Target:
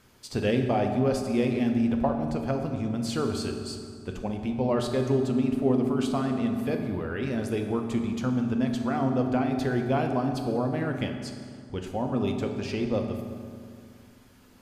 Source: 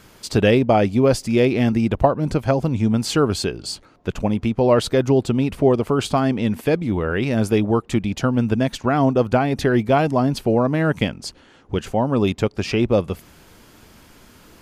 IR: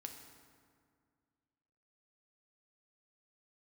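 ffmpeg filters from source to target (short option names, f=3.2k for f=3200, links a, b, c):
-filter_complex "[1:a]atrim=start_sample=2205,asetrate=38808,aresample=44100[a];[0:a][a]afir=irnorm=-1:irlink=0,volume=-6.5dB"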